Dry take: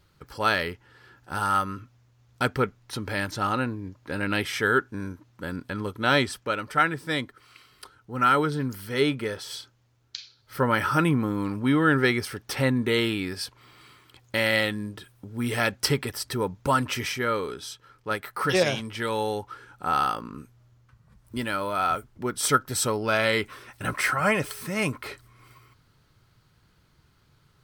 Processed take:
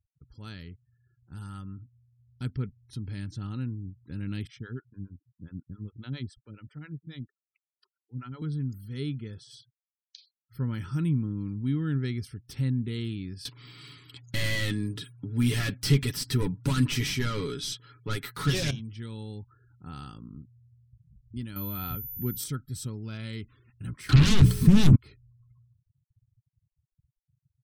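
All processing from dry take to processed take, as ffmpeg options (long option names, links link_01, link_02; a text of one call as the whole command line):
ffmpeg -i in.wav -filter_complex "[0:a]asettb=1/sr,asplit=3[link_01][link_02][link_03];[link_01]atrim=end=4.474[link_04];[link_02]atrim=start=4.47:end=8.42,asetpts=PTS-STARTPTS,afade=type=in:duration=0.004:curve=qsin,afade=type=out:start_time=3.946:duration=0.004:curve=qsin,highshelf=frequency=5200:gain=-9.5,acrossover=split=450[link_05][link_06];[link_05]aeval=exprs='val(0)*(1-1/2+1/2*cos(2*PI*7.3*n/s))':channel_layout=same[link_07];[link_06]aeval=exprs='val(0)*(1-1/2-1/2*cos(2*PI*7.3*n/s))':channel_layout=same[link_08];[link_07][link_08]amix=inputs=2:normalize=0[link_09];[link_03]atrim=start=8.416[link_10];[link_04][link_09]acrossfade=duration=0.004:curve1=hsin:curve2=qsin[link_11];[link_11][link_10]acrossfade=duration=0.004:curve1=qsin:curve2=hsin,asettb=1/sr,asplit=3[link_12][link_13][link_14];[link_12]atrim=end=13.454[link_15];[link_13]atrim=start=13.45:end=18.71,asetpts=PTS-STARTPTS,afade=type=in:duration=0.004:curve=qsin,afade=type=out:start_time=5.256:duration=0.004:curve=qsin,highshelf=frequency=3900:gain=5.5,asplit=2[link_16][link_17];[link_17]highpass=frequency=720:poles=1,volume=27dB,asoftclip=type=tanh:threshold=-4.5dB[link_18];[link_16][link_18]amix=inputs=2:normalize=0,lowpass=frequency=3100:poles=1,volume=-6dB,aecho=1:1:7.1:0.49,atrim=end_sample=231966[link_19];[link_14]atrim=start=18.706[link_20];[link_15][link_19]acrossfade=duration=0.004:curve1=hsin:curve2=qsin[link_21];[link_21][link_20]acrossfade=duration=0.004:curve1=qsin:curve2=hsin,asettb=1/sr,asplit=3[link_22][link_23][link_24];[link_22]atrim=end=21.564[link_25];[link_23]atrim=start=21.56:end=22.44,asetpts=PTS-STARTPTS,afade=type=in:duration=0.004:curve=qsin,afade=type=out:start_time=0.876:duration=0.004:curve=qsin,acontrast=81,aeval=exprs='val(0)+0.0708*sin(2*PI*14000*n/s)':channel_layout=same[link_26];[link_24]atrim=start=22.436[link_27];[link_25][link_26]acrossfade=duration=0.004:curve1=hsin:curve2=qsin[link_28];[link_28][link_27]acrossfade=duration=0.004:curve1=qsin:curve2=hsin,asettb=1/sr,asplit=3[link_29][link_30][link_31];[link_29]atrim=end=24.094[link_32];[link_30]atrim=start=24.09:end=24.96,asetpts=PTS-STARTPTS,afade=type=in:duration=0.004:curve=qsin,afade=type=out:start_time=0.866:duration=0.004:curve=qsin,tiltshelf=frequency=1300:gain=7.5,bandreject=frequency=60:width_type=h:width=6,bandreject=frequency=120:width_type=h:width=6,bandreject=frequency=180:width_type=h:width=6,bandreject=frequency=240:width_type=h:width=6,aeval=exprs='0.531*sin(PI/2*7.94*val(0)/0.531)':channel_layout=same[link_33];[link_31]atrim=start=24.956[link_34];[link_32][link_33]acrossfade=duration=0.004:curve1=hsin:curve2=qsin[link_35];[link_35][link_34]acrossfade=duration=0.004:curve1=qsin:curve2=hsin,afftfilt=real='re*gte(hypot(re,im),0.00794)':imag='im*gte(hypot(re,im),0.00794)':win_size=1024:overlap=0.75,firequalizer=gain_entry='entry(130,0);entry(580,-28);entry(3500,-14)':delay=0.05:min_phase=1,dynaudnorm=framelen=300:gausssize=13:maxgain=4.5dB,volume=-3.5dB" out.wav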